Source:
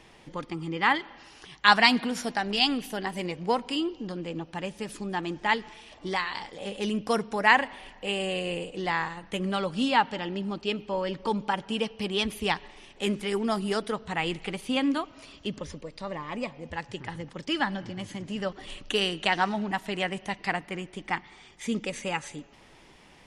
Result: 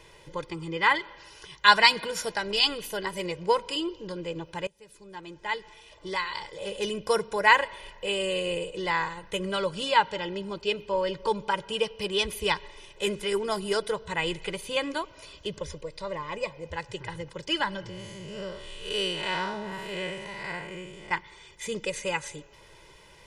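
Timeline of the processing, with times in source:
0:04.67–0:06.76: fade in, from −23.5 dB
0:17.89–0:21.11: spectrum smeared in time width 166 ms
whole clip: high-shelf EQ 6,800 Hz +5 dB; comb filter 2 ms, depth 87%; level −1.5 dB

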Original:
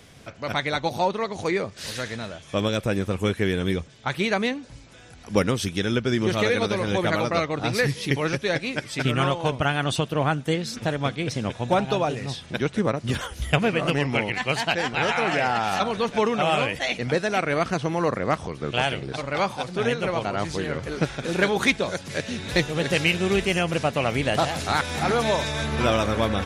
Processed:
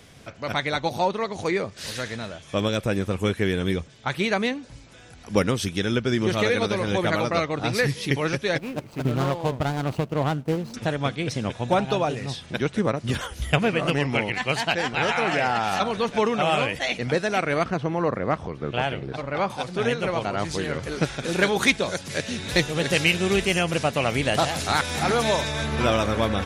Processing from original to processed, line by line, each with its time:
0:08.58–0:10.74: running median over 25 samples
0:17.64–0:19.50: low-pass filter 1,900 Hz 6 dB per octave
0:20.51–0:25.41: high-shelf EQ 4,000 Hz +5 dB

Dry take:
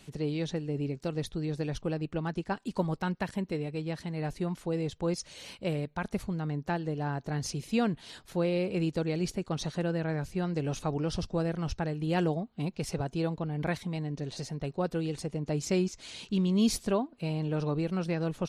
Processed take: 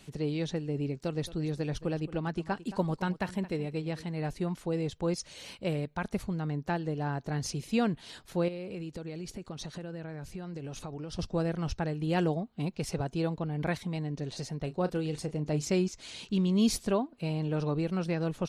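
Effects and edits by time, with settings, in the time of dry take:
0:00.94–0:04.08: single-tap delay 221 ms −16 dB
0:08.48–0:11.19: downward compressor, threshold −36 dBFS
0:14.63–0:15.66: double-tracking delay 33 ms −13 dB

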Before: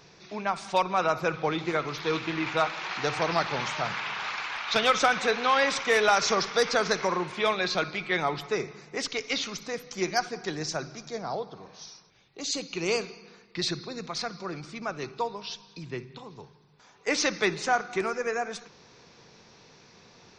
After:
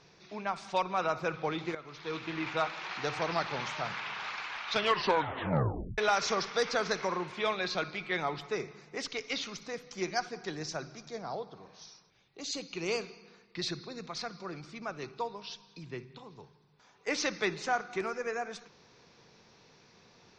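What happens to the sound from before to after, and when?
0:01.75–0:02.40: fade in, from −14.5 dB
0:04.74: tape stop 1.24 s
whole clip: low-pass filter 7,100 Hz 12 dB per octave; level −5.5 dB

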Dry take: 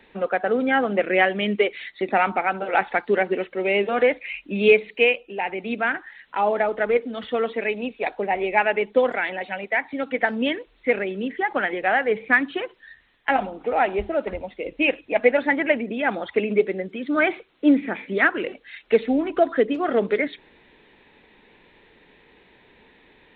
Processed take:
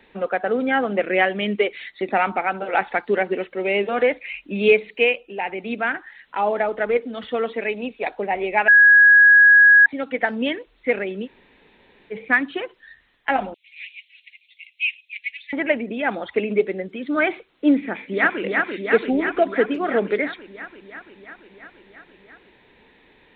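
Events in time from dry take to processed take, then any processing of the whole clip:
0:08.68–0:09.86: beep over 1,660 Hz −7.5 dBFS
0:11.25–0:12.13: fill with room tone, crossfade 0.06 s
0:13.54–0:15.53: Butterworth high-pass 2,200 Hz 72 dB per octave
0:17.79–0:18.42: delay throw 340 ms, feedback 75%, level −2.5 dB

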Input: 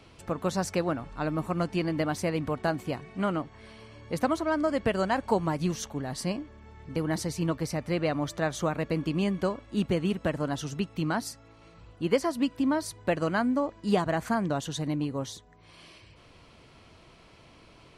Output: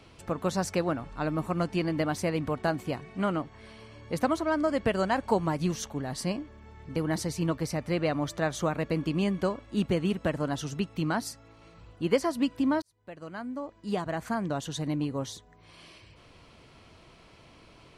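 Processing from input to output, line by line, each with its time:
0:12.82–0:15.00: fade in

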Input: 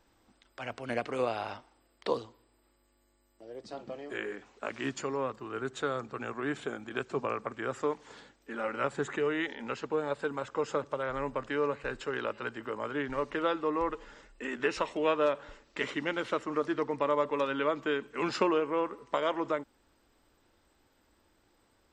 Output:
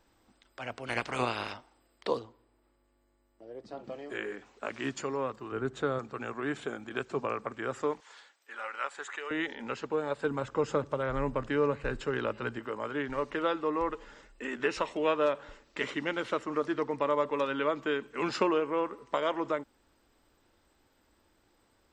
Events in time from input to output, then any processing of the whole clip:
0:00.86–0:01.52: ceiling on every frequency bin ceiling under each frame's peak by 17 dB
0:02.19–0:03.84: high-shelf EQ 2,900 Hz −10.5 dB
0:05.52–0:05.99: spectral tilt −2 dB per octave
0:08.00–0:09.31: high-pass filter 960 Hz
0:10.24–0:12.59: low-shelf EQ 240 Hz +11 dB

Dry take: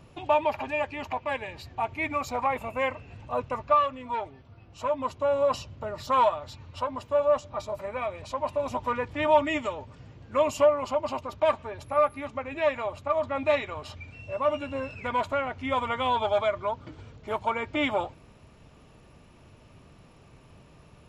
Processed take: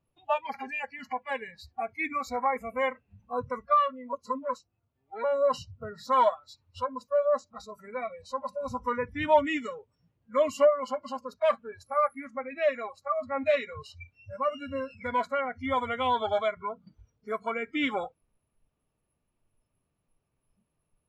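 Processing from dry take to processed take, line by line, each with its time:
0:04.13–0:05.24: reverse
whole clip: noise reduction from a noise print of the clip's start 27 dB; high-shelf EQ 5,400 Hz −6.5 dB

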